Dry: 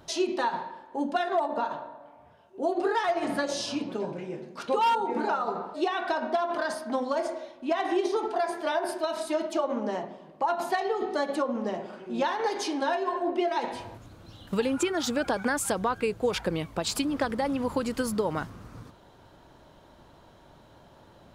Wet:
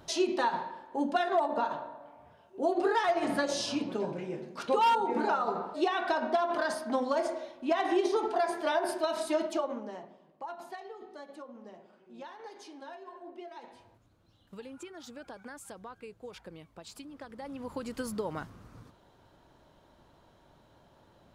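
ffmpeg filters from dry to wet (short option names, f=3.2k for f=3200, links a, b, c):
-af "volume=10.5dB,afade=t=out:st=9.42:d=0.43:silence=0.316228,afade=t=out:st=9.85:d=1.21:silence=0.421697,afade=t=in:st=17.26:d=0.8:silence=0.266073"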